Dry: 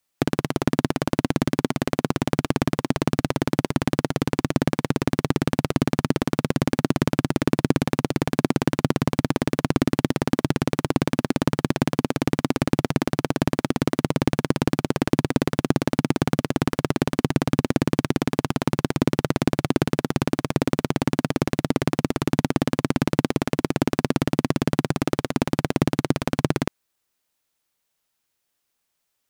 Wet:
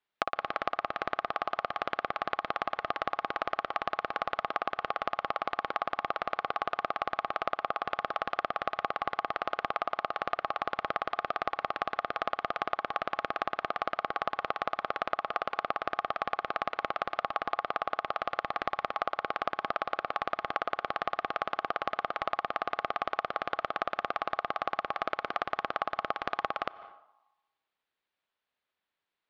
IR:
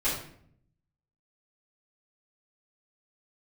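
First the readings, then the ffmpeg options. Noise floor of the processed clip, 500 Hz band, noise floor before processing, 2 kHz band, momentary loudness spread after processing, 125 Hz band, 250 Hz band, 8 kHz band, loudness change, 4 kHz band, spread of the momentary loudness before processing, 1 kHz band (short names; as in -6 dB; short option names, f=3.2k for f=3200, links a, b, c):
under -85 dBFS, -10.0 dB, -77 dBFS, -3.5 dB, 1 LU, -31.0 dB, -27.5 dB, under -25 dB, -9.5 dB, -9.0 dB, 2 LU, 0.0 dB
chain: -filter_complex "[0:a]lowpass=f=3k:w=0.5412,lowpass=f=3k:w=1.3066,asplit=2[a][b];[1:a]atrim=start_sample=2205,adelay=140[c];[b][c]afir=irnorm=-1:irlink=0,volume=-32dB[d];[a][d]amix=inputs=2:normalize=0,aeval=exprs='val(0)*sin(2*PI*960*n/s)':c=same,acompressor=threshold=-25dB:ratio=6,lowshelf=f=260:g=-10.5"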